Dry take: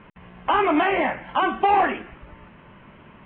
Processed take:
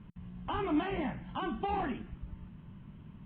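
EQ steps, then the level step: EQ curve 170 Hz 0 dB, 530 Hz -20 dB, 910 Hz -18 dB, 2300 Hz -21 dB, 3800 Hz -10 dB; +2.0 dB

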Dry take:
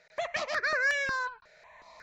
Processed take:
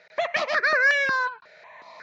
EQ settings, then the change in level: HPF 170 Hz 12 dB/oct; air absorption 210 m; high shelf 3700 Hz +8.5 dB; +8.0 dB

